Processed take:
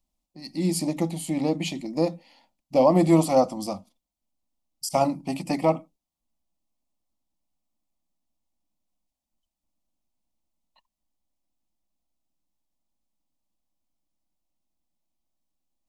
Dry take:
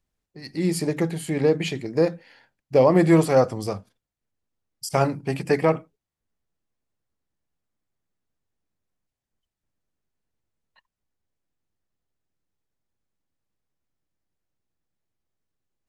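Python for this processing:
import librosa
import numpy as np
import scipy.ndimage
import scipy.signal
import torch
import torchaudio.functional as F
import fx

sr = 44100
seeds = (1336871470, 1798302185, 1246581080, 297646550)

y = fx.fixed_phaser(x, sr, hz=430.0, stages=6)
y = y * librosa.db_to_amplitude(2.0)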